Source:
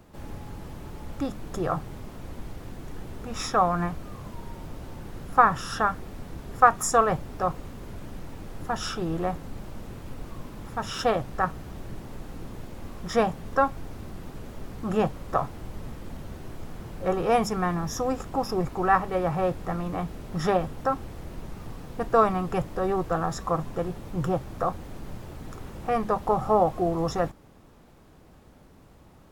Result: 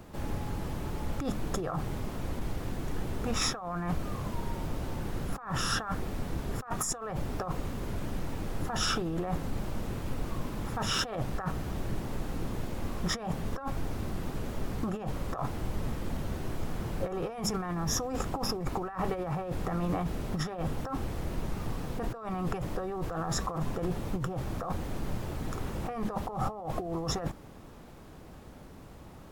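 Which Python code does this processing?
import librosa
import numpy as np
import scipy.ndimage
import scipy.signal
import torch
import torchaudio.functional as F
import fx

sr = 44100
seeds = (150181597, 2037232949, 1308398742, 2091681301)

y = fx.over_compress(x, sr, threshold_db=-32.0, ratio=-1.0)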